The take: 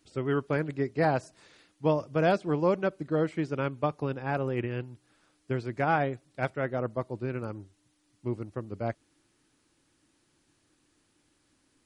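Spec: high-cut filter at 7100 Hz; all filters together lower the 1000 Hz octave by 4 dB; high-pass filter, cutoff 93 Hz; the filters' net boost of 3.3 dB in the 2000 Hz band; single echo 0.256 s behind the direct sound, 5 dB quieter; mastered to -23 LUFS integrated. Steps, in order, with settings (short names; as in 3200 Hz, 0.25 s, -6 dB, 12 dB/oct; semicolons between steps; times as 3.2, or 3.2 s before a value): HPF 93 Hz; LPF 7100 Hz; bell 1000 Hz -8 dB; bell 2000 Hz +8 dB; echo 0.256 s -5 dB; gain +7.5 dB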